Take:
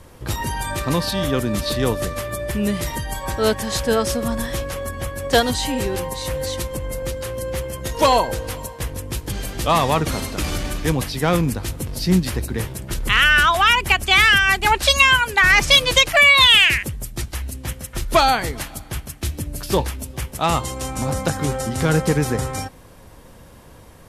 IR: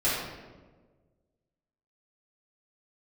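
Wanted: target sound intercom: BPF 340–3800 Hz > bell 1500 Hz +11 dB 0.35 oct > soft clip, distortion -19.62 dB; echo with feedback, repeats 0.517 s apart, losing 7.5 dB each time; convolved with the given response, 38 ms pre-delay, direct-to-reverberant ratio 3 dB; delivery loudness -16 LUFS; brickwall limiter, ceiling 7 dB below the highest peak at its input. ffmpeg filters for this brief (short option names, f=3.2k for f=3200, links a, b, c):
-filter_complex "[0:a]alimiter=limit=-11.5dB:level=0:latency=1,aecho=1:1:517|1034|1551|2068|2585:0.422|0.177|0.0744|0.0312|0.0131,asplit=2[a][b];[1:a]atrim=start_sample=2205,adelay=38[c];[b][c]afir=irnorm=-1:irlink=0,volume=-15dB[d];[a][d]amix=inputs=2:normalize=0,highpass=340,lowpass=3.8k,equalizer=f=1.5k:t=o:w=0.35:g=11,asoftclip=threshold=-6.5dB,volume=4dB"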